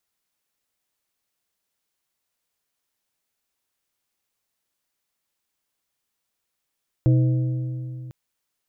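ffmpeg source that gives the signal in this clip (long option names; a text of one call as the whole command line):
ffmpeg -f lavfi -i "aevalsrc='0.224*pow(10,-3*t/2.95)*sin(2*PI*127*t)+0.0841*pow(10,-3*t/2.241)*sin(2*PI*317.5*t)+0.0316*pow(10,-3*t/1.946)*sin(2*PI*508*t)+0.0119*pow(10,-3*t/1.82)*sin(2*PI*635*t)':duration=1.05:sample_rate=44100" out.wav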